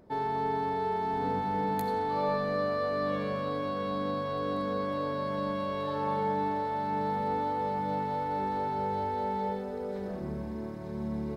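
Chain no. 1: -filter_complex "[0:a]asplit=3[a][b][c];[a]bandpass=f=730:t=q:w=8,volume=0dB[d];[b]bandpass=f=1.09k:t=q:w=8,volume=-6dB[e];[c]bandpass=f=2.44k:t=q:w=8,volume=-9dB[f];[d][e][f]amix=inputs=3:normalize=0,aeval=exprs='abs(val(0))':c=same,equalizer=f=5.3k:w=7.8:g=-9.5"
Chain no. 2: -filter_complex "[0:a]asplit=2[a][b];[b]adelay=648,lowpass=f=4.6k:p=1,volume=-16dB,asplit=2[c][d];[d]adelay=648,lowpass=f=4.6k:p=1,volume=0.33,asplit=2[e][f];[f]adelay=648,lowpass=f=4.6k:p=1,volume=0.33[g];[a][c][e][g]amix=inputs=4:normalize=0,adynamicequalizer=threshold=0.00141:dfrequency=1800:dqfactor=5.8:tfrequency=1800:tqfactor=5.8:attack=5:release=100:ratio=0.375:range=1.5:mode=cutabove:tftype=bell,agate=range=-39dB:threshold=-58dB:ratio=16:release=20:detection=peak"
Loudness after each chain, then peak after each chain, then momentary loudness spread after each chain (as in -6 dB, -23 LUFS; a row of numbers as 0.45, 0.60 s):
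-47.5, -32.0 LUFS; -29.0, -19.0 dBFS; 10, 7 LU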